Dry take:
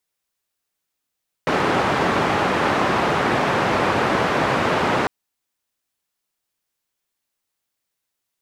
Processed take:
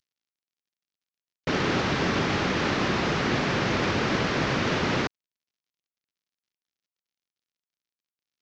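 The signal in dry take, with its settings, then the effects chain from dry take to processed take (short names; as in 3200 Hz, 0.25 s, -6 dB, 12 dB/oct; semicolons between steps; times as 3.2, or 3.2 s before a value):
noise band 110–1200 Hz, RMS -19.5 dBFS 3.60 s
CVSD 32 kbps; bell 820 Hz -10.5 dB 1.9 oct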